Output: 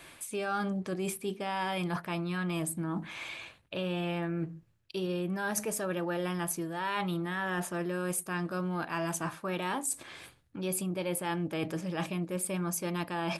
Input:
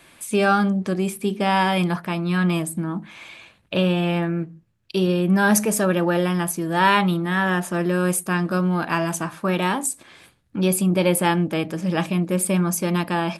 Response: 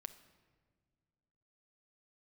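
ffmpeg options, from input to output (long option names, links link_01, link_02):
-af "equalizer=frequency=210:width=3.4:gain=-7,areverse,acompressor=threshold=-31dB:ratio=6,areverse"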